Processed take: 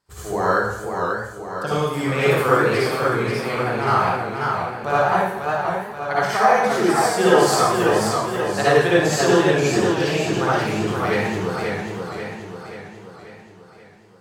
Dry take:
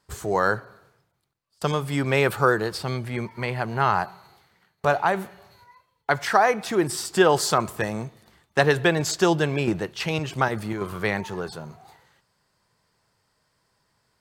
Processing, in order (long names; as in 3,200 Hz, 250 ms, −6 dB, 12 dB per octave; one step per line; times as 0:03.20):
convolution reverb RT60 0.85 s, pre-delay 47 ms, DRR −9 dB
feedback echo with a swinging delay time 535 ms, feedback 53%, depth 117 cents, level −4.5 dB
level −6.5 dB